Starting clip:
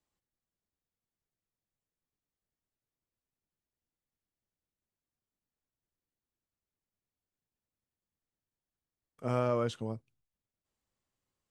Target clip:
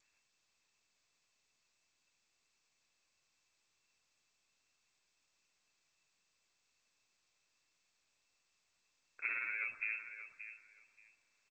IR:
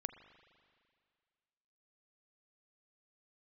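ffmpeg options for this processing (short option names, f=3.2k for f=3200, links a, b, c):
-filter_complex "[0:a]afreqshift=-15,acompressor=threshold=-42dB:ratio=10,flanger=delay=5.5:depth=1.9:regen=-32:speed=0.22:shape=triangular,aeval=exprs='val(0)*sin(2*PI*53*n/s)':c=same,flanger=delay=0.5:depth=2.7:regen=84:speed=1.3:shape=triangular,bandreject=f=1.9k:w=20,aecho=1:1:579|1158:0.282|0.0479,asplit=2[a][b];[1:a]atrim=start_sample=2205[c];[b][c]afir=irnorm=-1:irlink=0,volume=3dB[d];[a][d]amix=inputs=2:normalize=0,lowpass=f=2.3k:t=q:w=0.5098,lowpass=f=2.3k:t=q:w=0.6013,lowpass=f=2.3k:t=q:w=0.9,lowpass=f=2.3k:t=q:w=2.563,afreqshift=-2700,volume=11.5dB" -ar 16000 -c:a g722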